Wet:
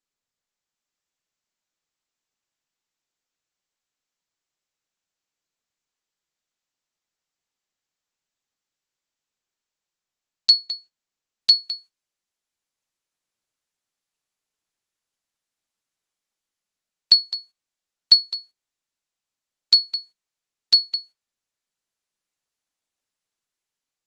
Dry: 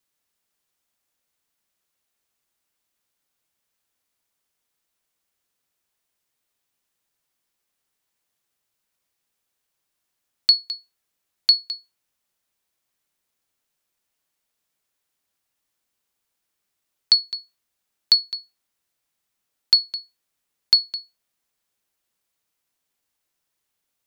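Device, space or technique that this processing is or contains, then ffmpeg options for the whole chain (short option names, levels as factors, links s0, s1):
video call: -af "highpass=f=100:w=0.5412,highpass=f=100:w=1.3066,dynaudnorm=f=300:g=5:m=2.24,agate=range=0.251:threshold=0.00708:ratio=16:detection=peak,volume=0.891" -ar 48000 -c:a libopus -b:a 12k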